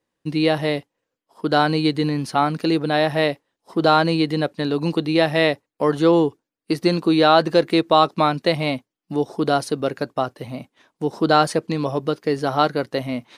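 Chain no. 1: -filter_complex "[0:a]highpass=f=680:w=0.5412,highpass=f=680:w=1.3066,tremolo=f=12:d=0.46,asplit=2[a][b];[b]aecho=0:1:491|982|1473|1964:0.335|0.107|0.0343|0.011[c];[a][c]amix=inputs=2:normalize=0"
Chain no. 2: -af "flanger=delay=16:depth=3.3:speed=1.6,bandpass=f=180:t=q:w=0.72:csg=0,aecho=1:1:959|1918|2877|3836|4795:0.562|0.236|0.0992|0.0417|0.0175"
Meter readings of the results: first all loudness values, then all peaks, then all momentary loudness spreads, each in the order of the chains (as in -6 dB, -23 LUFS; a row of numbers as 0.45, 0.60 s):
-26.0, -27.0 LUFS; -3.5, -8.5 dBFS; 15, 9 LU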